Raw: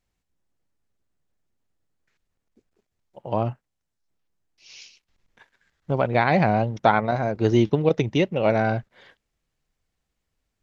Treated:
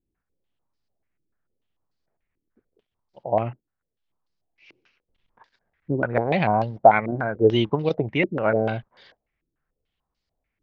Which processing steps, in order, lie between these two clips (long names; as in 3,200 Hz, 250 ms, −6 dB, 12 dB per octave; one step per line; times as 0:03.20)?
low-pass on a step sequencer 6.8 Hz 330–4,700 Hz
level −3.5 dB